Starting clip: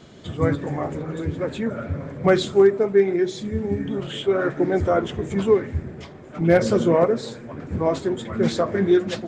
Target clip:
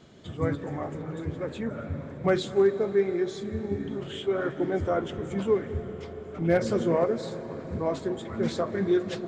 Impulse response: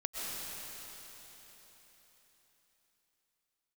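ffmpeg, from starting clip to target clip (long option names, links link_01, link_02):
-filter_complex "[0:a]asplit=2[link_01][link_02];[link_02]highshelf=frequency=4300:gain=-10.5[link_03];[1:a]atrim=start_sample=2205,asetrate=30429,aresample=44100[link_04];[link_03][link_04]afir=irnorm=-1:irlink=0,volume=-16dB[link_05];[link_01][link_05]amix=inputs=2:normalize=0,volume=-8dB"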